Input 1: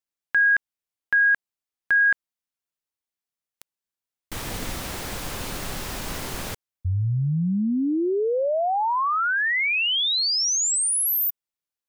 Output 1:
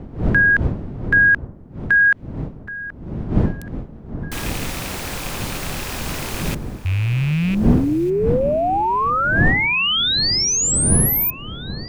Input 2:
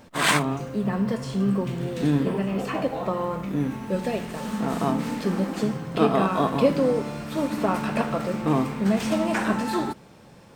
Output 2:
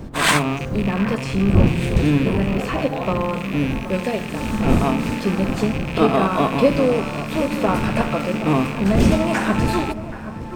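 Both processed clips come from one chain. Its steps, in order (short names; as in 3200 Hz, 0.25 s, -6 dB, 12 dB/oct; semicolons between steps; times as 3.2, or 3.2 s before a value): rattling part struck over -34 dBFS, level -24 dBFS; wind noise 200 Hz -29 dBFS; echo with dull and thin repeats by turns 0.776 s, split 1800 Hz, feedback 53%, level -13 dB; gain +4 dB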